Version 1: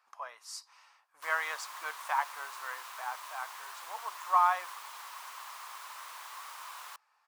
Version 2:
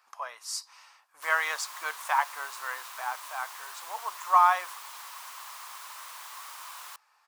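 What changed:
speech +4.5 dB
master: add high-shelf EQ 3,700 Hz +6 dB

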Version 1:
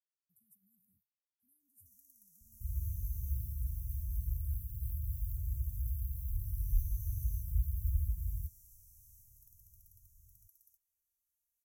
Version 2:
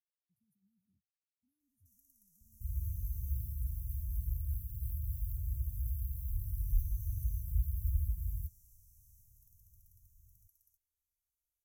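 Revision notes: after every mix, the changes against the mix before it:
speech: add moving average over 11 samples
first sound: add spectral tilt −1.5 dB per octave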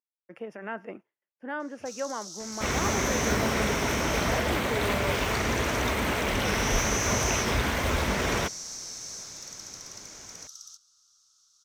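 master: remove inverse Chebyshev band-stop filter 450–3,400 Hz, stop band 80 dB

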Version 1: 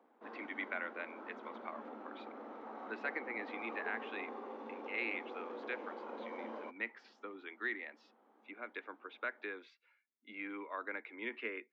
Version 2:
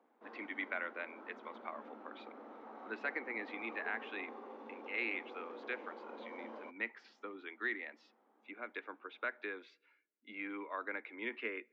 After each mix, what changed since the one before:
background −4.5 dB
reverb: on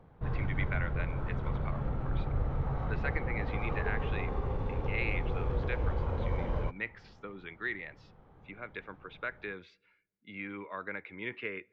background +8.5 dB
master: remove Chebyshev high-pass with heavy ripple 220 Hz, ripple 3 dB

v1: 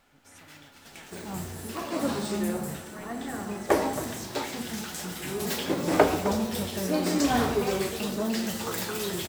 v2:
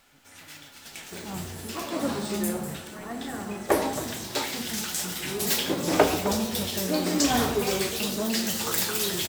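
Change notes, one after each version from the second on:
first sound: add high-shelf EQ 2,100 Hz +9 dB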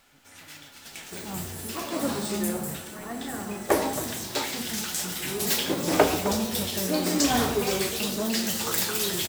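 second sound: add high-shelf EQ 7,600 Hz +8.5 dB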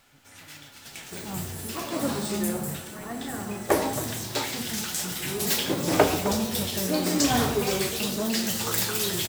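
master: add parametric band 120 Hz +11 dB 0.39 octaves

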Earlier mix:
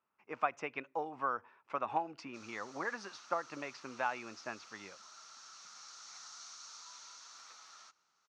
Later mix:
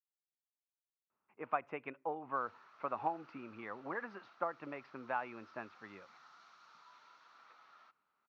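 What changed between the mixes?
speech: entry +1.10 s
master: add high-frequency loss of the air 480 metres

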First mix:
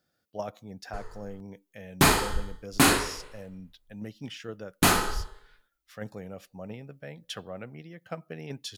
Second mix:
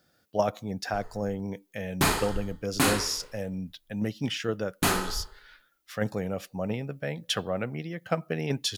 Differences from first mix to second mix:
speech +9.5 dB
background −4.0 dB

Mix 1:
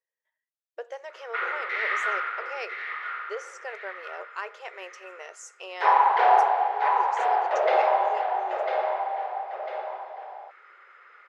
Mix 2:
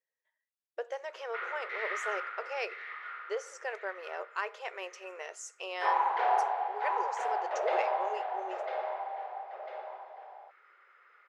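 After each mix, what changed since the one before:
background −9.0 dB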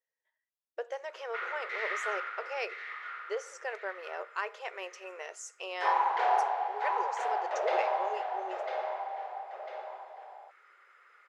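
background: remove high-frequency loss of the air 140 metres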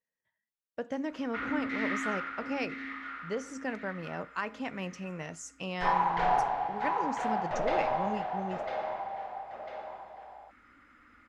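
master: remove linear-phase brick-wall high-pass 360 Hz

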